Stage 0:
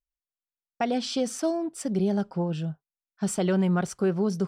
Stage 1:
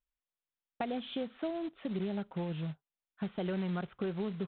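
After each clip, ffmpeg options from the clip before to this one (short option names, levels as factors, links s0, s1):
-af "acompressor=threshold=0.0126:ratio=2.5,aresample=8000,acrusher=bits=4:mode=log:mix=0:aa=0.000001,aresample=44100"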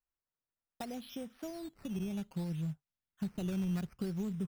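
-af "acrusher=samples=10:mix=1:aa=0.000001:lfo=1:lforange=10:lforate=0.62,asubboost=boost=4.5:cutoff=240,volume=0.473"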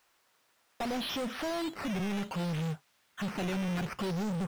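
-filter_complex "[0:a]asplit=2[s0][s1];[s1]highpass=f=720:p=1,volume=79.4,asoftclip=type=tanh:threshold=0.0562[s2];[s0][s2]amix=inputs=2:normalize=0,lowpass=f=3500:p=1,volume=0.501,volume=0.841"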